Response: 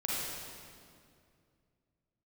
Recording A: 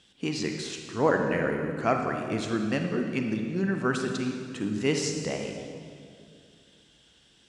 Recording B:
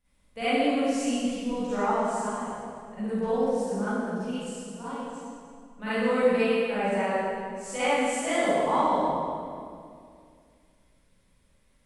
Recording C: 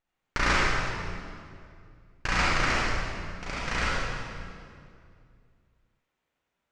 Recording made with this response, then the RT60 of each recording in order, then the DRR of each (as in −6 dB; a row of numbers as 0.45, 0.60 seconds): C; 2.4, 2.3, 2.3 seconds; 3.5, −15.5, −6.5 decibels